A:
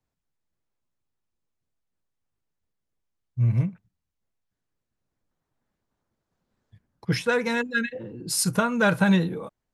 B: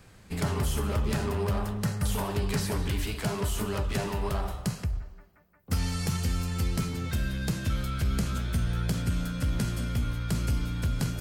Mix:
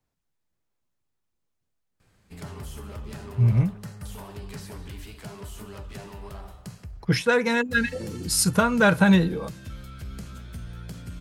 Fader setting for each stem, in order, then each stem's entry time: +2.5 dB, -10.0 dB; 0.00 s, 2.00 s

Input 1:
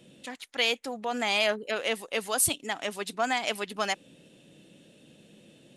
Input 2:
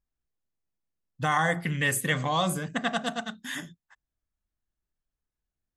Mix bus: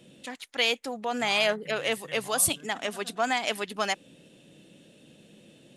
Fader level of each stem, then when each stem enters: +1.0 dB, -19.0 dB; 0.00 s, 0.00 s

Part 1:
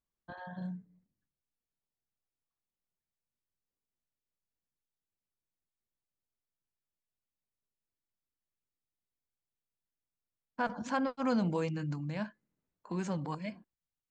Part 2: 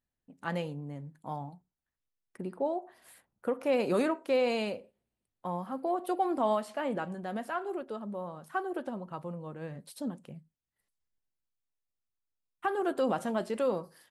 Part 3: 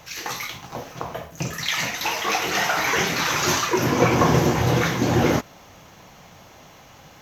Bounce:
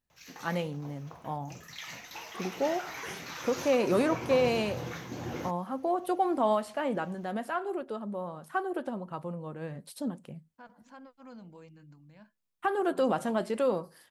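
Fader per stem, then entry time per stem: -18.5 dB, +2.0 dB, -18.5 dB; 0.00 s, 0.00 s, 0.10 s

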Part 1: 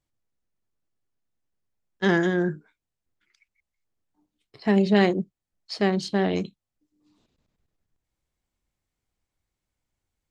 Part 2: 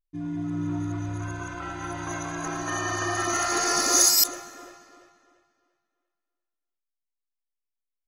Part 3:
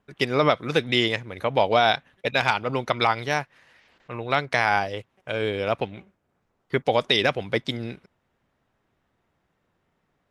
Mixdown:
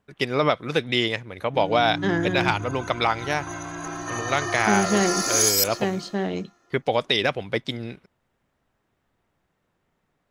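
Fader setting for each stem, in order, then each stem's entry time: -3.0 dB, -1.5 dB, -1.0 dB; 0.00 s, 1.40 s, 0.00 s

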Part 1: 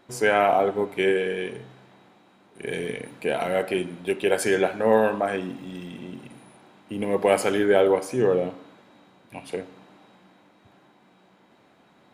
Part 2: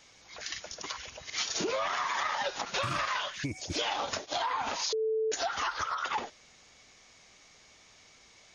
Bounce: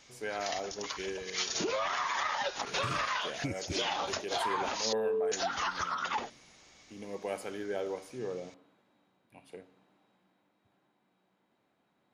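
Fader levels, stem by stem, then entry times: -17.0 dB, -1.0 dB; 0.00 s, 0.00 s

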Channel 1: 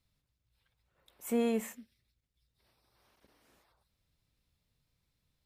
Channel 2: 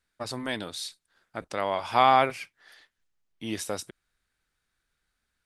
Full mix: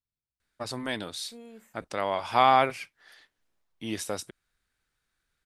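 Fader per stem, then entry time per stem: -17.5 dB, -0.5 dB; 0.00 s, 0.40 s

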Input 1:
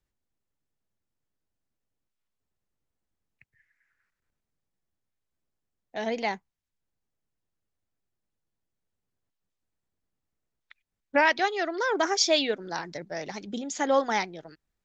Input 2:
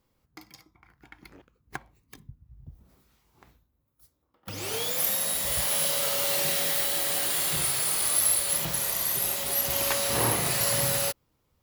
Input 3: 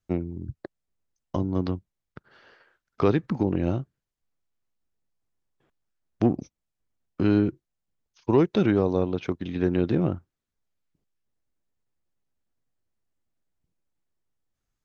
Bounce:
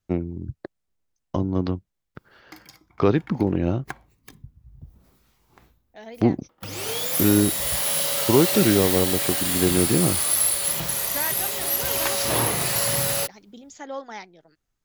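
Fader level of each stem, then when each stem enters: -10.5 dB, +2.5 dB, +2.5 dB; 0.00 s, 2.15 s, 0.00 s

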